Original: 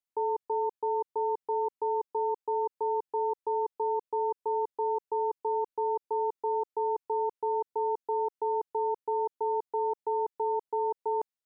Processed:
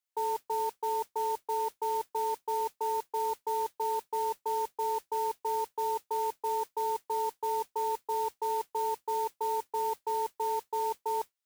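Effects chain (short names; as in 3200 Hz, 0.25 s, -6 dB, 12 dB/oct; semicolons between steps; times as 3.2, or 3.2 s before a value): HPF 970 Hz 6 dB/oct; modulation noise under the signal 16 dB; gain +3 dB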